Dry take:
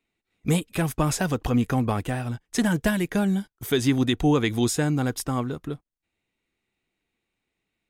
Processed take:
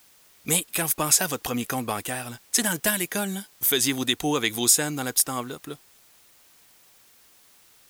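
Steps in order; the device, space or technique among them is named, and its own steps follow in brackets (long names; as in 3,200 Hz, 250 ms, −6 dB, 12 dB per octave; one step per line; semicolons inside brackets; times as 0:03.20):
turntable without a phono preamp (RIAA equalisation recording; white noise bed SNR 29 dB)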